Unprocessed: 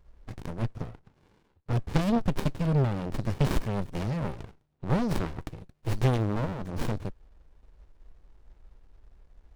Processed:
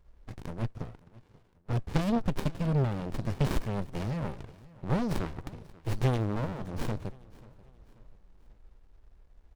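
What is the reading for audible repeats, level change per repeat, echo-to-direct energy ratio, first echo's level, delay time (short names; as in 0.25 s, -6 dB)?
2, -7.0 dB, -20.5 dB, -21.5 dB, 0.537 s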